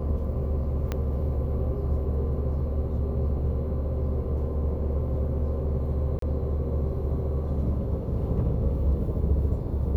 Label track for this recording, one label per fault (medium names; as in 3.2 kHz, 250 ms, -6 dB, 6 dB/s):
0.920000	0.920000	pop -15 dBFS
6.190000	6.220000	dropout 33 ms